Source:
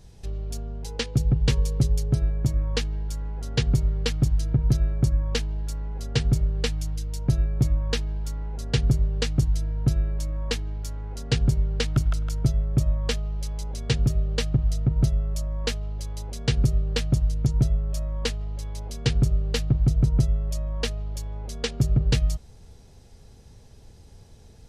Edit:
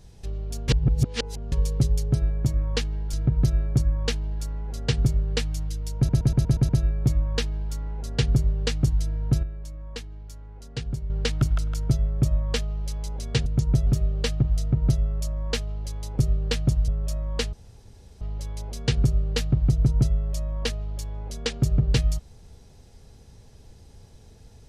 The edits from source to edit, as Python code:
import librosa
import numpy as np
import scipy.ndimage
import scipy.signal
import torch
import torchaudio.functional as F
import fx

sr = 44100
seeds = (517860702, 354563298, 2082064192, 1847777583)

y = fx.edit(x, sr, fx.reverse_span(start_s=0.68, length_s=0.84),
    fx.cut(start_s=3.13, length_s=1.27),
    fx.stutter(start_s=7.24, slice_s=0.12, count=7),
    fx.clip_gain(start_s=9.98, length_s=1.67, db=-9.0),
    fx.cut(start_s=16.33, length_s=0.31),
    fx.move(start_s=17.33, length_s=0.41, to_s=14.01),
    fx.insert_room_tone(at_s=18.39, length_s=0.68), tone=tone)